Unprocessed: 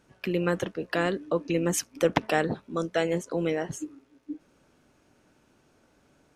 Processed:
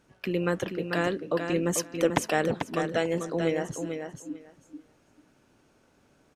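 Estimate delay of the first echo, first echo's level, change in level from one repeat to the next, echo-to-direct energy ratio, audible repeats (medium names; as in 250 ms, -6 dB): 442 ms, -6.5 dB, -16.0 dB, -6.5 dB, 2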